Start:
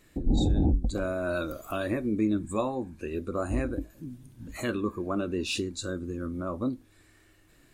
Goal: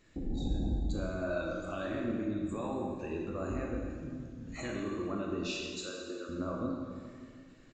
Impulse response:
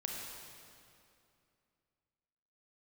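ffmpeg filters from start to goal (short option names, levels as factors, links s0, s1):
-filter_complex "[0:a]alimiter=level_in=1.19:limit=0.0631:level=0:latency=1:release=113,volume=0.841,asettb=1/sr,asplit=3[s0][s1][s2];[s0]atrim=end=5.584[s3];[s1]atrim=start=5.58:end=6.29,asetpts=PTS-STARTPTS,afade=t=in:d=0.004:c=qsin,afade=t=out:st=0.706:d=0.004:c=qsin,highpass=f=370:w=0.5412,highpass=f=370:w=1.3066[s4];[s2]atrim=start=6.286[s5];[s3][s4]acrossfade=d=0.004:c1=hsin:c2=qsin[s6];[s6][s5]acrossfade=d=0.004:c1=qsin:c2=hsin[s7];[1:a]atrim=start_sample=2205,asetrate=57330,aresample=44100[s8];[s7][s8]afir=irnorm=-1:irlink=0,aresample=16000,aresample=44100"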